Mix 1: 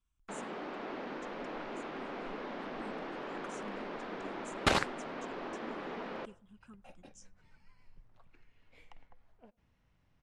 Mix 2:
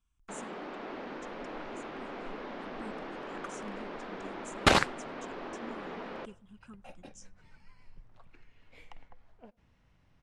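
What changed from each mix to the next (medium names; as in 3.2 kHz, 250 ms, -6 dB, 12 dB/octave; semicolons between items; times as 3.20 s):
speech +4.0 dB; second sound +5.5 dB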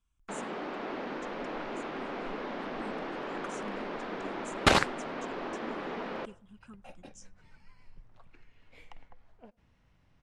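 first sound +4.0 dB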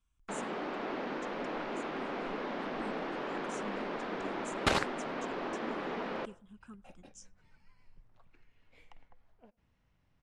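second sound -6.5 dB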